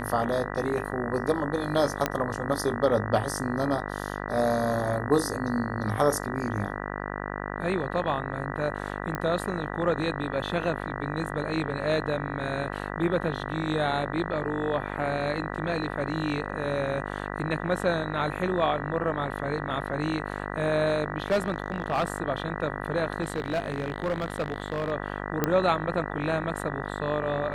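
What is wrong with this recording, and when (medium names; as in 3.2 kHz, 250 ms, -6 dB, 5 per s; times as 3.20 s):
buzz 50 Hz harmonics 39 -34 dBFS
2.06 s: pop -9 dBFS
9.15 s: pop -17 dBFS
21.20–22.04 s: clipped -19.5 dBFS
23.22–24.92 s: clipped -22.5 dBFS
25.44 s: pop -9 dBFS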